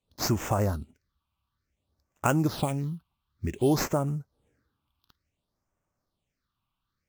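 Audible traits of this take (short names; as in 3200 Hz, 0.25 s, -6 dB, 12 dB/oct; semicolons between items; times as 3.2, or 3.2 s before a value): aliases and images of a low sample rate 10000 Hz, jitter 20%; phasing stages 6, 0.56 Hz, lowest notch 480–4000 Hz; Vorbis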